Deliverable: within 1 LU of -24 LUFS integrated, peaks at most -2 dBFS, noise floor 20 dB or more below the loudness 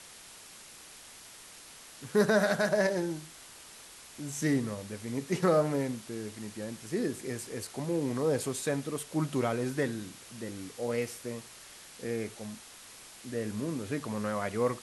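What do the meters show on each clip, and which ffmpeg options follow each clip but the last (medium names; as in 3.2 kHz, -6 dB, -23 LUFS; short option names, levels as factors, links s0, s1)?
noise floor -51 dBFS; noise floor target -53 dBFS; loudness -32.5 LUFS; peak level -13.5 dBFS; loudness target -24.0 LUFS
-> -af "afftdn=nr=6:nf=-51"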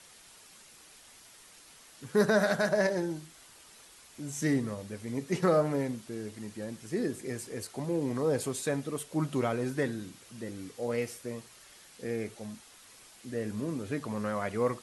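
noise floor -55 dBFS; loudness -32.5 LUFS; peak level -14.0 dBFS; loudness target -24.0 LUFS
-> -af "volume=2.66"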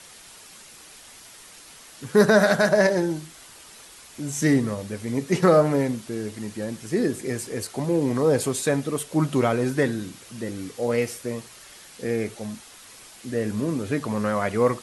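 loudness -24.0 LUFS; peak level -5.5 dBFS; noise floor -47 dBFS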